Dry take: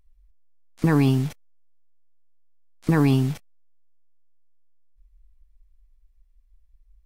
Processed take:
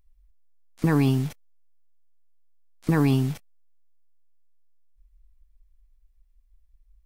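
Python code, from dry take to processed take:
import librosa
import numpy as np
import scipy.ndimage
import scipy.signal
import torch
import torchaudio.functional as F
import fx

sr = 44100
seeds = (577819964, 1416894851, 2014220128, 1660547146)

y = fx.high_shelf(x, sr, hz=12000.0, db=4.5)
y = y * librosa.db_to_amplitude(-2.0)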